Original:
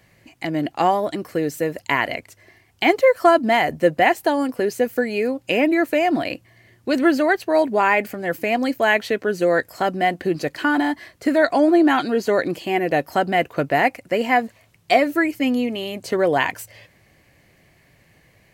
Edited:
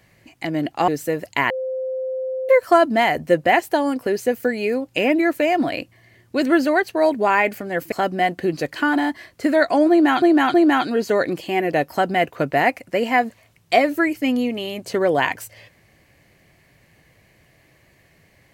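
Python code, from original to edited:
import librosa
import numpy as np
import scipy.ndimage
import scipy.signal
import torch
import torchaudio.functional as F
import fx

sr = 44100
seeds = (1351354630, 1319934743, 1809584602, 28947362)

y = fx.edit(x, sr, fx.cut(start_s=0.88, length_s=0.53),
    fx.bleep(start_s=2.03, length_s=0.99, hz=520.0, db=-22.5),
    fx.cut(start_s=8.45, length_s=1.29),
    fx.repeat(start_s=11.72, length_s=0.32, count=3), tone=tone)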